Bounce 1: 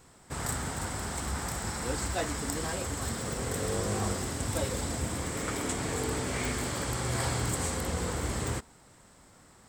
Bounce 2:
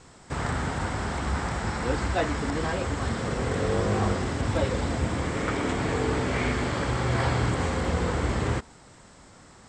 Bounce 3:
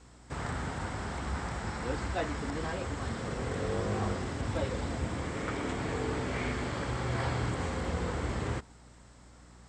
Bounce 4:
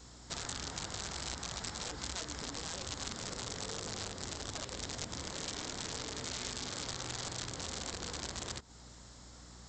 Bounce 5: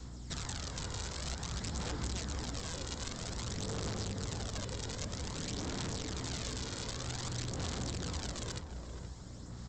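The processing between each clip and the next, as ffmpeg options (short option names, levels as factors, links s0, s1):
-filter_complex "[0:a]lowpass=f=7600:w=0.5412,lowpass=f=7600:w=1.3066,acrossover=split=3500[s0][s1];[s1]acompressor=threshold=0.00251:ratio=4:attack=1:release=60[s2];[s0][s2]amix=inputs=2:normalize=0,volume=2.11"
-af "aeval=exprs='val(0)+0.00398*(sin(2*PI*60*n/s)+sin(2*PI*2*60*n/s)/2+sin(2*PI*3*60*n/s)/3+sin(2*PI*4*60*n/s)/4+sin(2*PI*5*60*n/s)/5)':c=same,volume=0.447"
-af "acompressor=threshold=0.01:ratio=12,aresample=16000,aeval=exprs='(mod(70.8*val(0)+1,2)-1)/70.8':c=same,aresample=44100,aexciter=amount=3.8:drive=2.9:freq=3500"
-filter_complex "[0:a]acrossover=split=290|610|2000[s0][s1][s2][s3];[s0]aeval=exprs='0.0119*sin(PI/2*1.78*val(0)/0.0119)':c=same[s4];[s4][s1][s2][s3]amix=inputs=4:normalize=0,aphaser=in_gain=1:out_gain=1:delay=2.1:decay=0.39:speed=0.52:type=sinusoidal,asplit=2[s5][s6];[s6]adelay=474,lowpass=f=1100:p=1,volume=0.531,asplit=2[s7][s8];[s8]adelay=474,lowpass=f=1100:p=1,volume=0.51,asplit=2[s9][s10];[s10]adelay=474,lowpass=f=1100:p=1,volume=0.51,asplit=2[s11][s12];[s12]adelay=474,lowpass=f=1100:p=1,volume=0.51,asplit=2[s13][s14];[s14]adelay=474,lowpass=f=1100:p=1,volume=0.51,asplit=2[s15][s16];[s16]adelay=474,lowpass=f=1100:p=1,volume=0.51[s17];[s5][s7][s9][s11][s13][s15][s17]amix=inputs=7:normalize=0,volume=0.75"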